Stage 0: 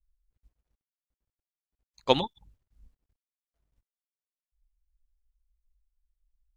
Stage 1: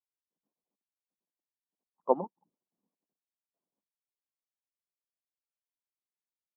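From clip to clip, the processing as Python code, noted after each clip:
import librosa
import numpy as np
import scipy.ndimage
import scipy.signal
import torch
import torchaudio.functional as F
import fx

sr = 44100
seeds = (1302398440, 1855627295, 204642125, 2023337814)

y = scipy.signal.sosfilt(scipy.signal.cheby1(4, 1.0, [180.0, 1100.0], 'bandpass', fs=sr, output='sos'), x)
y = fx.hpss(y, sr, part='harmonic', gain_db=-9)
y = y * 10.0 ** (-1.5 / 20.0)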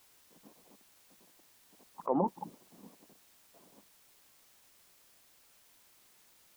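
y = fx.env_flatten(x, sr, amount_pct=100)
y = y * 10.0 ** (-8.0 / 20.0)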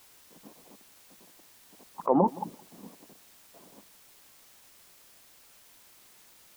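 y = x + 10.0 ** (-22.5 / 20.0) * np.pad(x, (int(167 * sr / 1000.0), 0))[:len(x)]
y = y * 10.0 ** (7.0 / 20.0)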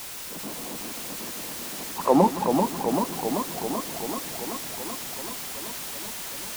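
y = x + 0.5 * 10.0 ** (-34.5 / 20.0) * np.sign(x)
y = fx.echo_warbled(y, sr, ms=385, feedback_pct=75, rate_hz=2.8, cents=93, wet_db=-5.0)
y = y * 10.0 ** (4.0 / 20.0)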